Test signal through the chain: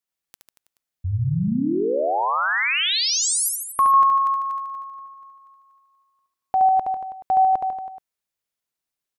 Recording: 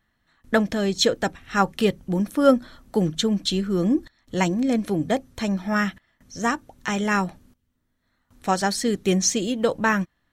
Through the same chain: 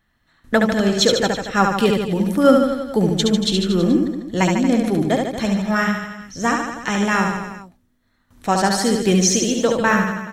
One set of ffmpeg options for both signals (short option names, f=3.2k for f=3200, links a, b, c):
-af "aecho=1:1:70|147|231.7|324.9|427.4:0.631|0.398|0.251|0.158|0.1,volume=3dB"